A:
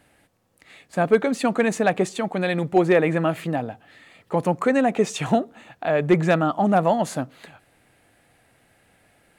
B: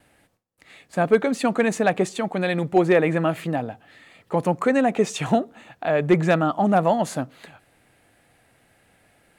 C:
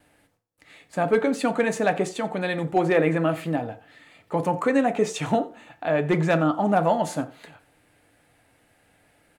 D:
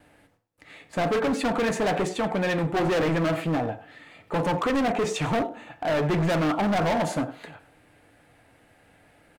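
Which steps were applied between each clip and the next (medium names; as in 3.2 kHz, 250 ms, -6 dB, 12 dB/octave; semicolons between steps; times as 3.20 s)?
gate with hold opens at -55 dBFS
delay 88 ms -20 dB; FDN reverb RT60 0.38 s, low-frequency decay 0.75×, high-frequency decay 0.6×, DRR 7 dB; trim -2.5 dB
treble shelf 4.1 kHz -7.5 dB; speakerphone echo 100 ms, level -17 dB; overload inside the chain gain 26 dB; trim +4.5 dB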